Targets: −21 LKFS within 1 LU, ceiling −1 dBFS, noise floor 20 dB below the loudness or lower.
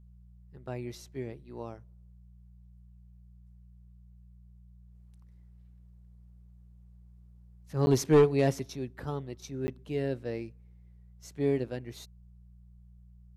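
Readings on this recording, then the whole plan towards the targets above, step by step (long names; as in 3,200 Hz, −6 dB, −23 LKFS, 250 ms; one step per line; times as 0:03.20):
number of dropouts 2; longest dropout 10 ms; mains hum 60 Hz; hum harmonics up to 180 Hz; level of the hum −52 dBFS; integrated loudness −31.0 LKFS; sample peak −14.5 dBFS; target loudness −21.0 LKFS
→ repair the gap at 0:07.86/0:09.67, 10 ms
hum removal 60 Hz, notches 3
level +10 dB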